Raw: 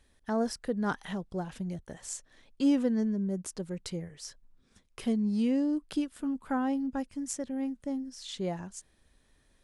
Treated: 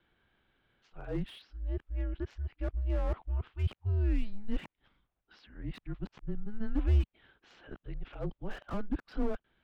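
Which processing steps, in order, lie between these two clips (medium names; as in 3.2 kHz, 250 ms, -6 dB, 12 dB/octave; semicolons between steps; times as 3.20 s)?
reverse the whole clip; mistuned SSB -210 Hz 170–3600 Hz; slew-rate limiter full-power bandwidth 11 Hz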